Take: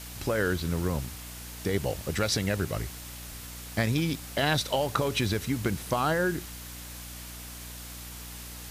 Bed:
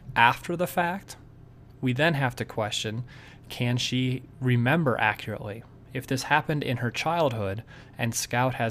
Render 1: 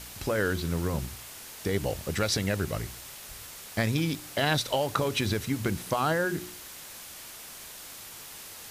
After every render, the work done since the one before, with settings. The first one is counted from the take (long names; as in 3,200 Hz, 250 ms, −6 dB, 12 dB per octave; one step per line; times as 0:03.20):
hum removal 60 Hz, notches 6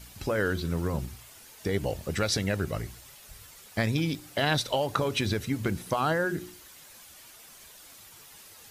broadband denoise 9 dB, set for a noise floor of −45 dBFS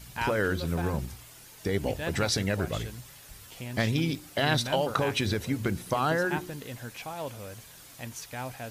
mix in bed −12.5 dB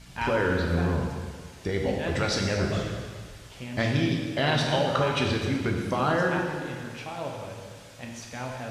high-frequency loss of the air 66 metres
dense smooth reverb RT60 1.7 s, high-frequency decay 0.95×, DRR 0 dB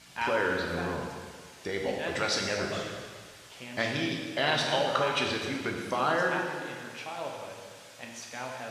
high-pass filter 520 Hz 6 dB per octave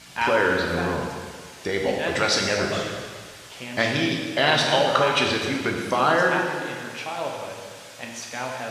level +7.5 dB